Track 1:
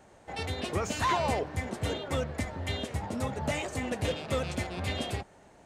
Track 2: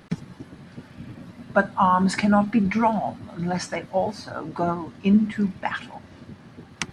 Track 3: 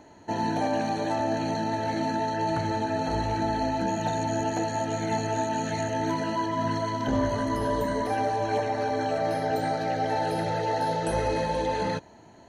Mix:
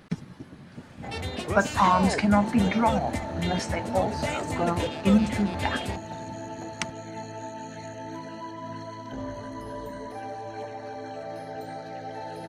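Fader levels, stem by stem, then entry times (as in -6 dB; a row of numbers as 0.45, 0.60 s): +1.0, -2.5, -10.0 dB; 0.75, 0.00, 2.05 s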